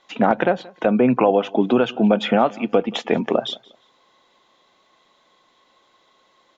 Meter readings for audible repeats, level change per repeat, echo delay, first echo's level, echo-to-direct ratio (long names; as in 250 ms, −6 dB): 2, −11.0 dB, 178 ms, −23.5 dB, −23.0 dB